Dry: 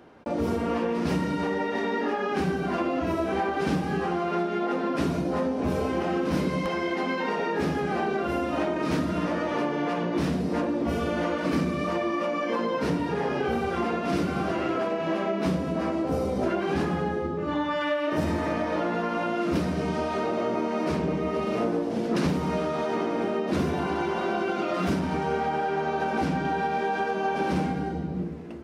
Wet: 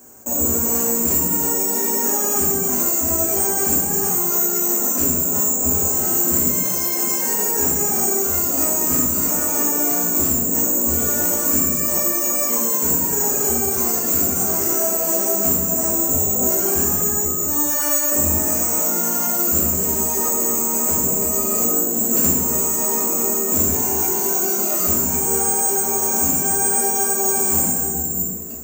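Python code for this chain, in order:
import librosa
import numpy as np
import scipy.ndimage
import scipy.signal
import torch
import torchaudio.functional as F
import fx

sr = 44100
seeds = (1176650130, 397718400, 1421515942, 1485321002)

y = (np.kron(scipy.signal.resample_poly(x, 1, 6), np.eye(6)[0]) * 6)[:len(x)]
y = fx.peak_eq(y, sr, hz=2100.0, db=-2.5, octaves=2.1)
y = fx.rev_fdn(y, sr, rt60_s=1.0, lf_ratio=0.9, hf_ratio=0.7, size_ms=73.0, drr_db=-3.0)
y = y * 10.0 ** (-3.5 / 20.0)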